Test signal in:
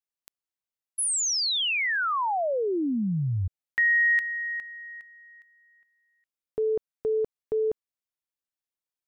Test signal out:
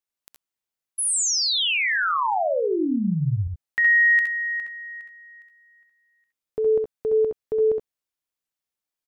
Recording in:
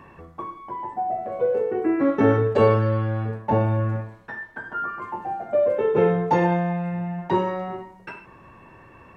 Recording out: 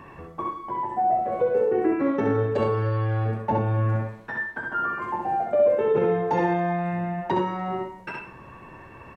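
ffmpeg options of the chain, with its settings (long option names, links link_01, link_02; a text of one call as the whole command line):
ffmpeg -i in.wav -filter_complex "[0:a]alimiter=limit=-17dB:level=0:latency=1:release=418,asplit=2[link_01][link_02];[link_02]aecho=0:1:66|80:0.596|0.299[link_03];[link_01][link_03]amix=inputs=2:normalize=0,volume=2dB" out.wav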